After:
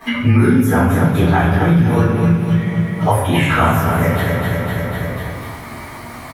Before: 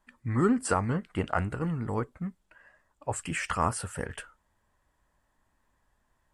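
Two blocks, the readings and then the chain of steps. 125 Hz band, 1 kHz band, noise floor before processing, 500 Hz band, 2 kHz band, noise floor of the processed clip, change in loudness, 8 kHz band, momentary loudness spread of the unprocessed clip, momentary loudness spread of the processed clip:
+20.0 dB, +14.0 dB, -74 dBFS, +15.0 dB, +17.0 dB, -32 dBFS, +15.5 dB, +5.5 dB, 14 LU, 16 LU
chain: frequency axis rescaled in octaves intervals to 108%; high-pass 91 Hz; on a send: feedback delay 249 ms, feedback 41%, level -8.5 dB; on the sum: simulated room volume 260 m³, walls mixed, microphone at 3.9 m; three bands compressed up and down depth 100%; trim +5 dB

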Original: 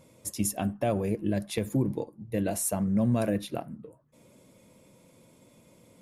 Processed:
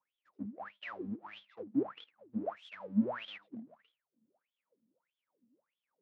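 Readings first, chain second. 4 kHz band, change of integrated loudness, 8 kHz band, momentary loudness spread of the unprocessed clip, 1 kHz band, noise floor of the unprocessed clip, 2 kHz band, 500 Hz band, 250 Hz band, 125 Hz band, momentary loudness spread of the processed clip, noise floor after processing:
-7.0 dB, -9.5 dB, under -40 dB, 11 LU, -8.5 dB, -60 dBFS, -5.0 dB, -12.0 dB, -8.0 dB, -18.5 dB, 17 LU, under -85 dBFS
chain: square wave that keeps the level; wah-wah 1.6 Hz 220–3400 Hz, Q 20; distance through air 190 m; three bands expanded up and down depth 40%; trim +1 dB

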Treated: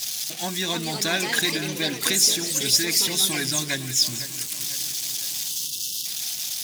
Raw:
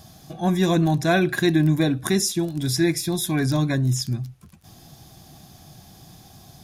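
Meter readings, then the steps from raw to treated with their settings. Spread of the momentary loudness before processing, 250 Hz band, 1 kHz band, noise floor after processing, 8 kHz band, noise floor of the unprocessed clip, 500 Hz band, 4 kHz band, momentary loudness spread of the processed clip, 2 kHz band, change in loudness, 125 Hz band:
6 LU, -10.5 dB, -5.0 dB, -33 dBFS, +9.5 dB, -49 dBFS, -7.5 dB, +9.5 dB, 8 LU, +1.5 dB, -0.5 dB, -13.5 dB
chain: zero-crossing glitches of -22 dBFS; compression, threshold -18 dBFS, peak gain reduction 4.5 dB; frequency weighting D; harmonic-percussive split percussive +6 dB; peaking EQ 6 kHz +3 dB 0.31 oct; on a send: two-band feedback delay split 2.8 kHz, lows 502 ms, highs 194 ms, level -13.5 dB; on the sum: time-frequency box 5.48–6.06 s, 440–2600 Hz -19 dB; ever faster or slower copies 393 ms, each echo +4 st, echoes 2, each echo -6 dB; trim -8 dB

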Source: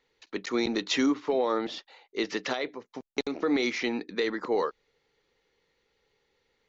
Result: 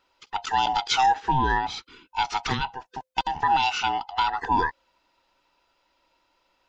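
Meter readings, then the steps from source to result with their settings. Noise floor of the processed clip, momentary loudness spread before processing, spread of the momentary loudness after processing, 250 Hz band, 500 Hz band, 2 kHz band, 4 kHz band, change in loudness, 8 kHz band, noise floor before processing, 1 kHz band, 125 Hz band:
-71 dBFS, 11 LU, 12 LU, -7.5 dB, -10.0 dB, +5.0 dB, +5.5 dB, +4.5 dB, no reading, -75 dBFS, +15.5 dB, +14.5 dB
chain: split-band scrambler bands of 500 Hz; trim +4.5 dB

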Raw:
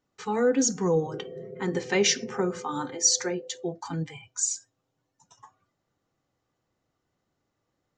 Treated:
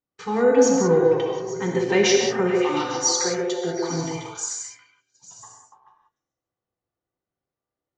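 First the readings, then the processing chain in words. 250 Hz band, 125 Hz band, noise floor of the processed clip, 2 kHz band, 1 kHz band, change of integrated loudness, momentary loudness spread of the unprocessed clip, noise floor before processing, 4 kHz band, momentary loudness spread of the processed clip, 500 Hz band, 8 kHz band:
+6.0 dB, +4.0 dB, under -85 dBFS, +5.5 dB, +7.0 dB, +5.5 dB, 12 LU, -80 dBFS, +3.0 dB, 11 LU, +8.5 dB, +1.0 dB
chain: distance through air 78 m; repeats whose band climbs or falls 142 ms, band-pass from 470 Hz, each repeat 0.7 oct, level 0 dB; gate -56 dBFS, range -17 dB; gated-style reverb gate 210 ms flat, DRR 1 dB; trim +3 dB

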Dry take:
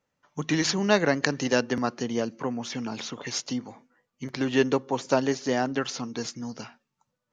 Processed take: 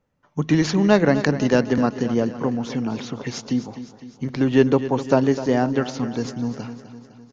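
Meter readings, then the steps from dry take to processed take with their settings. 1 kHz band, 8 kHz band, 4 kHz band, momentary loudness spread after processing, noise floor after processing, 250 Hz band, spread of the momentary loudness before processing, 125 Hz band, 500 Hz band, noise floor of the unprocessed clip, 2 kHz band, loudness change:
+3.5 dB, -3.5 dB, -1.5 dB, 16 LU, -56 dBFS, +8.0 dB, 15 LU, +10.0 dB, +6.0 dB, -81 dBFS, +1.5 dB, +6.0 dB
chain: tilt EQ -2.5 dB/octave; on a send: feedback delay 254 ms, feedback 56%, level -13 dB; on the sum: trim +3 dB

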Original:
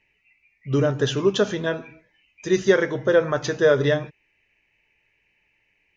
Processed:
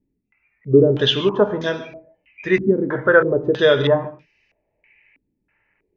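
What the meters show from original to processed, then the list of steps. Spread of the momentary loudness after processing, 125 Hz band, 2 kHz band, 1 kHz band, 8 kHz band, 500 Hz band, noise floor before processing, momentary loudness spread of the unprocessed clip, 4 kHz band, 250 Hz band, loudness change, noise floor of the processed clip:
10 LU, +2.5 dB, +5.0 dB, +5.0 dB, no reading, +4.0 dB, -69 dBFS, 9 LU, +8.0 dB, +4.0 dB, +4.0 dB, -74 dBFS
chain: gated-style reverb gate 170 ms flat, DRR 11 dB; step-sequenced low-pass 3.1 Hz 270–5100 Hz; trim +1.5 dB

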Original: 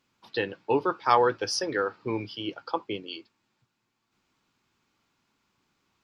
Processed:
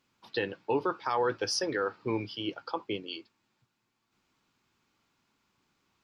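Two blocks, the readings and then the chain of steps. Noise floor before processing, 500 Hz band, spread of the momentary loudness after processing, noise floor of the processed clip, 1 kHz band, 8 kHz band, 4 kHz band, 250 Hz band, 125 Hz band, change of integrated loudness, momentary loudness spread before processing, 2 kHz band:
-79 dBFS, -4.0 dB, 8 LU, -80 dBFS, -7.0 dB, -1.5 dB, -1.5 dB, -2.0 dB, -2.5 dB, -4.5 dB, 13 LU, -3.5 dB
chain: peak limiter -18 dBFS, peak gain reduction 10.5 dB; trim -1 dB

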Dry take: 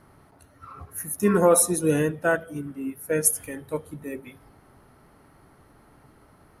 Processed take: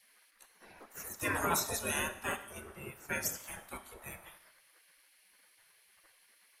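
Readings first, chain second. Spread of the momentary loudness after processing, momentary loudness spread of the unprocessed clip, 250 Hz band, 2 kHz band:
17 LU, 19 LU, -18.5 dB, -6.0 dB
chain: spectral gate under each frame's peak -20 dB weak; Schroeder reverb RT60 0.78 s, combs from 28 ms, DRR 12.5 dB; trim +3 dB

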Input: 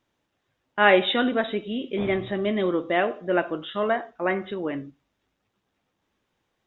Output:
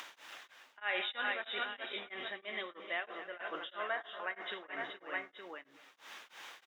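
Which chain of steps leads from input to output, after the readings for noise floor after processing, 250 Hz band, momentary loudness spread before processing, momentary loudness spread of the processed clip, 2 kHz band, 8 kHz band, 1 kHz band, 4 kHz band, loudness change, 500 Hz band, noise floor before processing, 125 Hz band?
-67 dBFS, -26.5 dB, 12 LU, 16 LU, -10.0 dB, no reading, -14.5 dB, -9.5 dB, -15.0 dB, -20.0 dB, -77 dBFS, under -30 dB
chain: on a send: multi-tap echo 78/368/425/869 ms -17/-17/-10/-16 dB; on the sum: upward compressor, threshold -33 dBFS; feedback delay 236 ms, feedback 46%, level -21 dB; reverse; compression 8:1, threshold -33 dBFS, peak gain reduction 20.5 dB; reverse; high-pass 1.4 kHz 12 dB/octave; tilt EQ -2 dB/octave; tremolo of two beating tones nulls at 3.1 Hz; trim +10.5 dB

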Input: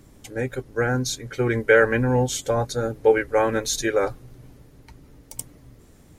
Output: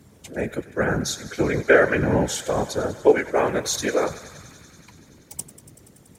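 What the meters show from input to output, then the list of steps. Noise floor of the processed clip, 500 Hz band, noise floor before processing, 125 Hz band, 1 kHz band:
-53 dBFS, 0.0 dB, -51 dBFS, -2.5 dB, +0.5 dB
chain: on a send: thinning echo 95 ms, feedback 84%, high-pass 550 Hz, level -16 dB; on the sum: whisper effect; high-pass 69 Hz

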